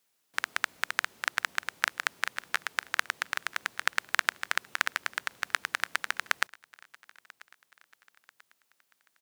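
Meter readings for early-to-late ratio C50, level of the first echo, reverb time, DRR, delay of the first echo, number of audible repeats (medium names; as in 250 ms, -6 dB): no reverb, -24.0 dB, no reverb, no reverb, 989 ms, 2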